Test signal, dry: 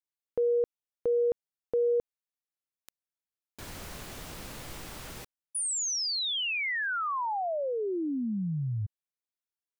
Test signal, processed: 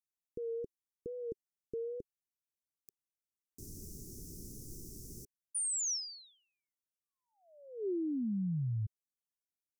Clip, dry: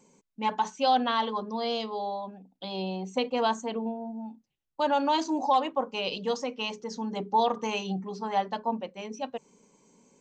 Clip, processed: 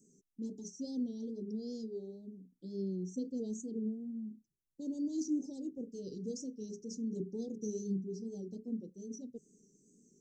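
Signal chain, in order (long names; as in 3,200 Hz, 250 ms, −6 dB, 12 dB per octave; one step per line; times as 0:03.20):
tape wow and flutter 2.1 Hz 65 cents
Chebyshev band-stop filter 400–5,600 Hz, order 4
level −3 dB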